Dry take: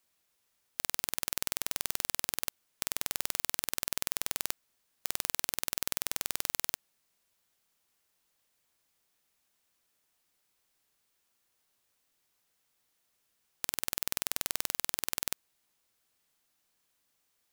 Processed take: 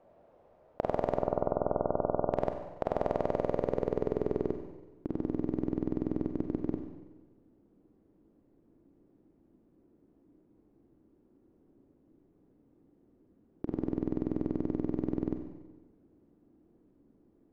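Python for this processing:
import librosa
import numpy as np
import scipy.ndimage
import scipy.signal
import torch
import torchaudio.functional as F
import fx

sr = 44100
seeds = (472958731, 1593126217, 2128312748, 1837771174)

p1 = fx.auto_swell(x, sr, attack_ms=192.0, at=(6.29, 6.72))
p2 = fx.over_compress(p1, sr, threshold_db=-41.0, ratio=-0.5)
p3 = p1 + F.gain(torch.from_numpy(p2), 1.0).numpy()
p4 = fx.brickwall_bandstop(p3, sr, low_hz=1500.0, high_hz=12000.0, at=(1.16, 2.3))
p5 = fx.filter_sweep_lowpass(p4, sr, from_hz=620.0, to_hz=310.0, start_s=3.18, end_s=5.05, q=3.6)
p6 = fx.rev_schroeder(p5, sr, rt60_s=1.2, comb_ms=32, drr_db=5.0)
y = F.gain(torch.from_numpy(p6), 9.0).numpy()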